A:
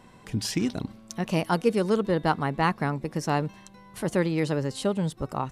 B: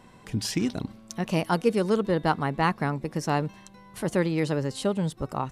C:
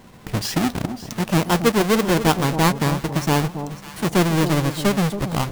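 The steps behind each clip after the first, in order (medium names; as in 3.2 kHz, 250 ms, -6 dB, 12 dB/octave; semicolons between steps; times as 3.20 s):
no audible change
square wave that keeps the level; echo whose repeats swap between lows and highs 274 ms, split 970 Hz, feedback 55%, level -9.5 dB; trim +1.5 dB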